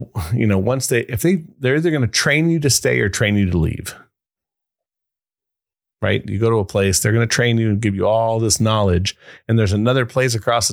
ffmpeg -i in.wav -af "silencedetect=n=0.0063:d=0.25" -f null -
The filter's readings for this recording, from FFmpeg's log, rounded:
silence_start: 4.03
silence_end: 6.02 | silence_duration: 1.99